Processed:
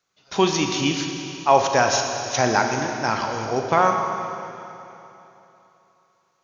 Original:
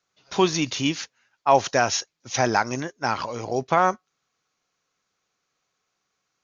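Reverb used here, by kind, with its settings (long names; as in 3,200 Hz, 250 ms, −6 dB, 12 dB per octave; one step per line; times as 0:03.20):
four-comb reverb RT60 3.1 s, combs from 28 ms, DRR 3 dB
level +1 dB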